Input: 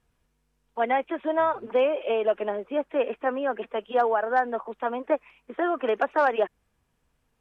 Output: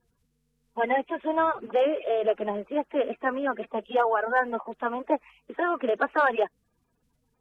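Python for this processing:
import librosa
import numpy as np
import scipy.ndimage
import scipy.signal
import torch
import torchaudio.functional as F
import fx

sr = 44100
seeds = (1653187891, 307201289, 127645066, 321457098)

y = fx.spec_quant(x, sr, step_db=30)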